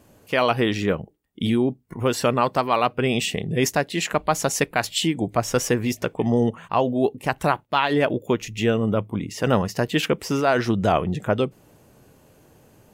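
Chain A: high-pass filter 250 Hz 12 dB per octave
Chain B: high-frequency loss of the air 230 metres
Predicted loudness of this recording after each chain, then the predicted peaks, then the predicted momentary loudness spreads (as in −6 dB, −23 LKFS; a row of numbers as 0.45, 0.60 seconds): −24.0, −24.0 LKFS; −4.0, −6.5 dBFS; 6, 5 LU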